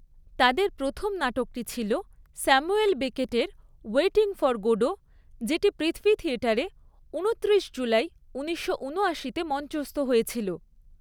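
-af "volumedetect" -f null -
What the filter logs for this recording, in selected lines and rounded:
mean_volume: -26.9 dB
max_volume: -5.2 dB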